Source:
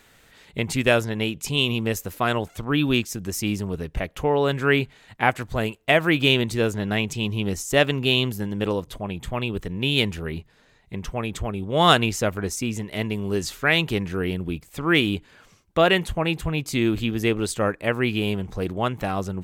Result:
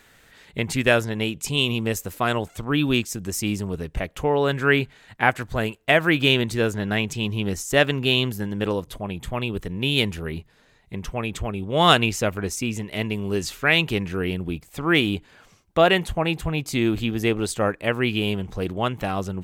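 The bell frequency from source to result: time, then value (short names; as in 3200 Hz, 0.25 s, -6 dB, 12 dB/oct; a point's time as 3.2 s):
bell +3.5 dB 0.42 oct
1700 Hz
from 1.04 s 8000 Hz
from 4.42 s 1600 Hz
from 8.74 s 11000 Hz
from 11.09 s 2600 Hz
from 14.39 s 750 Hz
from 17.71 s 3000 Hz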